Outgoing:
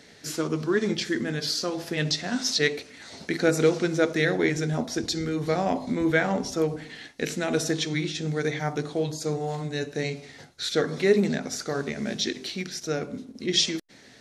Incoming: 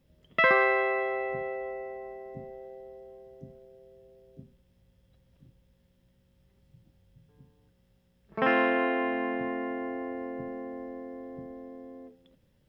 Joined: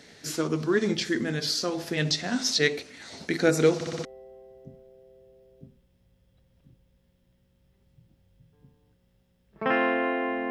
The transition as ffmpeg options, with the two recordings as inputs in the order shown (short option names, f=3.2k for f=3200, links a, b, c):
-filter_complex "[0:a]apad=whole_dur=10.5,atrim=end=10.5,asplit=5[a][b][c][d][e];[a]atrim=end=3.812[f];[b]atrim=start=3.748:end=3.812[g];[c]atrim=start=3.748:end=3.812[h];[d]atrim=start=3.748:end=3.812[i];[e]atrim=start=3.748:end=3.812[j];[1:a]atrim=start=2.808:end=9.26[k];[f][g]acrossfade=d=0.004:c1=hsin:c2=hsin[l];[l][h]acrossfade=d=0.004:c1=hsin:c2=hsin[m];[m][i]acrossfade=d=0.004:c1=hsin:c2=hsin[n];[n][j]acrossfade=d=0.004:c1=hsin:c2=hsin[o];[o][k]acrossfade=d=0.004:c1=hsin:c2=hsin"